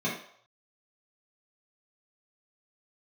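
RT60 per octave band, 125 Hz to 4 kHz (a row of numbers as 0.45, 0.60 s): 0.40, 0.35, 0.60, 0.65, 0.55, 0.55 s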